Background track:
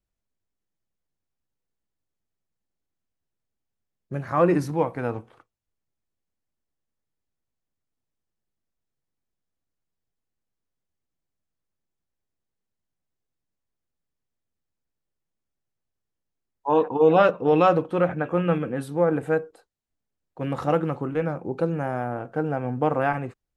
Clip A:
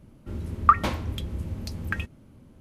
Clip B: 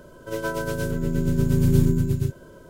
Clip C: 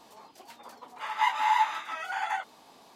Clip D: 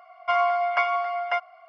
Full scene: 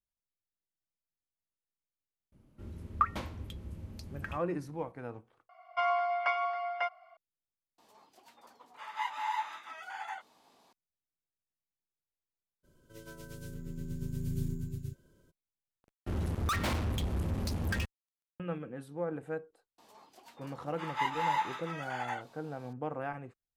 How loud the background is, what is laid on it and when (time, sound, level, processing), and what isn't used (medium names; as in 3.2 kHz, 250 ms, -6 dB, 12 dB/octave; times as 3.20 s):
background track -14.5 dB
2.32 s: add A -11.5 dB
5.49 s: add D -7.5 dB
7.78 s: replace with C -10 dB
12.63 s: add B -15 dB, fades 0.02 s + peaking EQ 780 Hz -12.5 dB 2.1 oct
15.80 s: replace with A -15.5 dB + fuzz box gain 34 dB, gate -42 dBFS
19.78 s: add C -6.5 dB